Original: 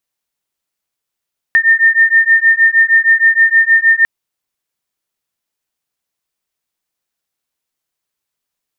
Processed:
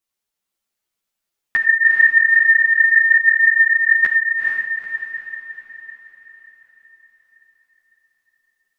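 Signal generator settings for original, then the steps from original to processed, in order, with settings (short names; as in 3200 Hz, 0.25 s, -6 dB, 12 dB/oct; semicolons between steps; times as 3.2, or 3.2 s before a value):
beating tones 1810 Hz, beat 6.4 Hz, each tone -10 dBFS 2.50 s
on a send: diffused feedback echo 0.455 s, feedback 51%, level -3 dB; on the sum: non-linear reverb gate 0.11 s flat, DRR 9 dB; ensemble effect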